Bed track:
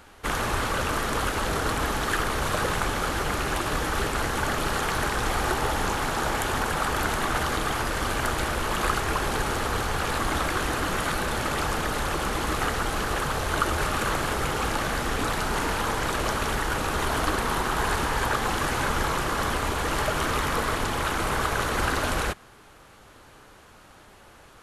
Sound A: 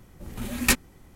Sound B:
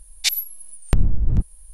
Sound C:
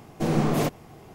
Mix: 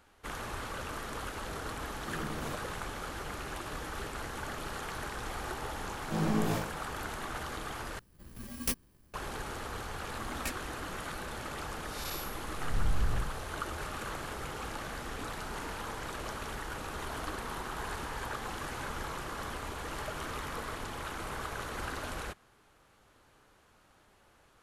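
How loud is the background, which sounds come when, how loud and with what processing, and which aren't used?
bed track −13 dB
0:01.86: mix in C −17.5 dB
0:05.90: mix in C −12 dB + flutter between parallel walls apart 3.2 metres, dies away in 0.49 s
0:07.99: overwrite with A −11.5 dB + samples in bit-reversed order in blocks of 32 samples
0:09.77: mix in A −18 dB + one half of a high-frequency compander decoder only
0:11.81: mix in B −9 dB + spectrum smeared in time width 254 ms

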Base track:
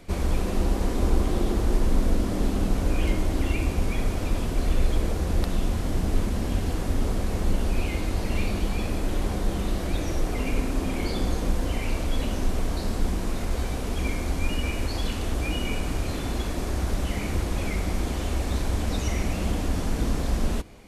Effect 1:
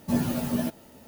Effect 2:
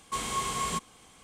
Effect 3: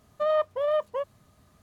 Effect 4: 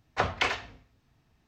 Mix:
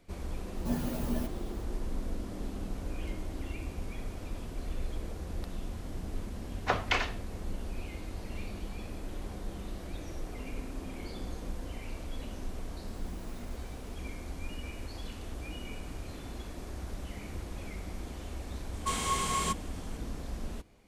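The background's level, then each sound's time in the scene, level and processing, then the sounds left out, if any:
base track −13.5 dB
0:00.57: mix in 1 −8 dB
0:06.50: mix in 4 −2 dB
0:12.87: mix in 1 −16.5 dB + downward compressor, threshold −34 dBFS
0:18.74: mix in 2
not used: 3

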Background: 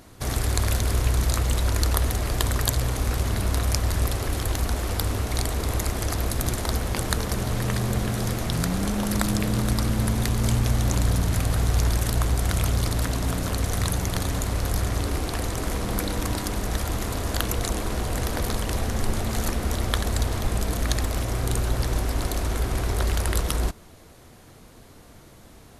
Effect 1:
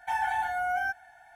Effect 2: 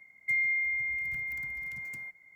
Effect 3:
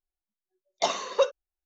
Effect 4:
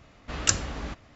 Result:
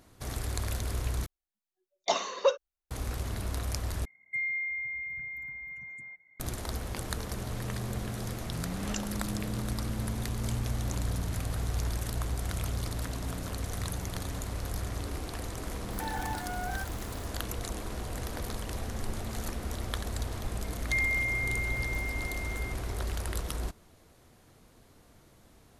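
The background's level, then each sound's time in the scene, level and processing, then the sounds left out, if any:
background −10 dB
0:01.26: overwrite with 3 −2 dB
0:04.05: overwrite with 2 −4 dB + spectral peaks only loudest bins 64
0:08.47: mix in 4 −17.5 dB + background raised ahead of every attack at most 56 dB per second
0:15.92: mix in 1 −9 dB + spike at every zero crossing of −35.5 dBFS
0:20.63: mix in 2 −1 dB

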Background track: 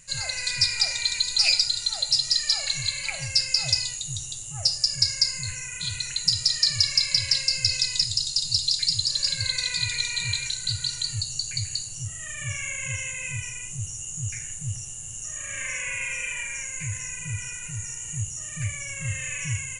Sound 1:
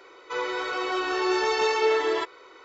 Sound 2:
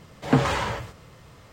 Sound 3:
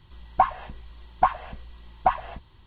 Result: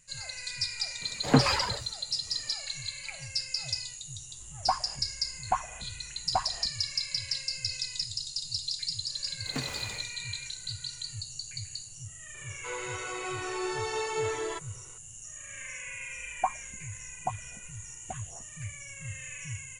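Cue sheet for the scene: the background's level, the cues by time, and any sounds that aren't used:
background track −10 dB
0:01.01: mix in 2 −1.5 dB + reverb reduction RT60 1.1 s
0:04.29: mix in 3 −8 dB
0:09.23: mix in 2 −17 dB + short delay modulated by noise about 1,600 Hz, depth 0.19 ms
0:12.34: mix in 1 −9 dB
0:16.04: mix in 3 −8 dB + phaser with staggered stages 1.3 Hz

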